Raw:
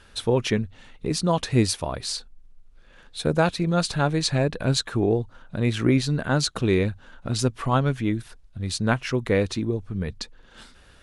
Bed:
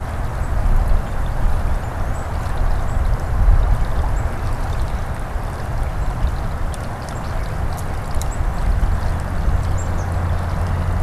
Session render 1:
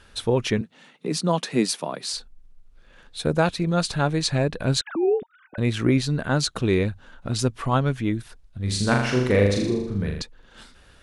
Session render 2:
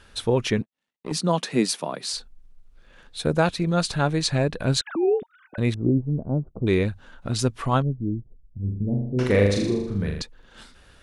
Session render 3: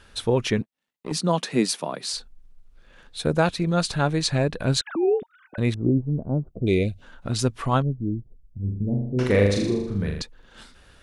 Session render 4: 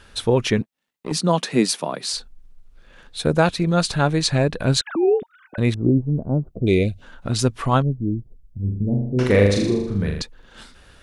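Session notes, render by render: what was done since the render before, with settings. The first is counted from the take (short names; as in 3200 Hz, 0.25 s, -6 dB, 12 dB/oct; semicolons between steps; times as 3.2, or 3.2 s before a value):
0.61–2.14 steep high-pass 150 Hz 48 dB/oct; 4.81–5.58 sine-wave speech; 8.6–10.22 flutter echo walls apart 6.8 m, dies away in 0.78 s
0.62–1.12 power-law curve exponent 2; 5.74–6.67 Gaussian blur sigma 14 samples; 7.82–9.19 Gaussian blur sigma 21 samples
6.54–7.02 spectral gain 740–2000 Hz -20 dB
gain +3.5 dB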